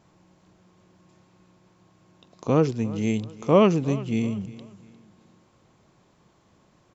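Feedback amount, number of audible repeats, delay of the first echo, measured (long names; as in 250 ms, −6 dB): 34%, 2, 353 ms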